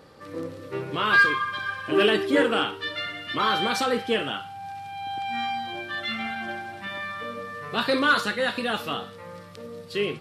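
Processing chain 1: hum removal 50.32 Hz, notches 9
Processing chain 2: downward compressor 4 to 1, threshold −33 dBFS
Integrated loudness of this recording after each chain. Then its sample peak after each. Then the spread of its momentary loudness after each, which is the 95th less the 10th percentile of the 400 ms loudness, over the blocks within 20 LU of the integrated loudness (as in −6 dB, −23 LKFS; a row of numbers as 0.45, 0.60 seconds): −25.5, −35.0 LKFS; −8.5, −20.5 dBFS; 16, 6 LU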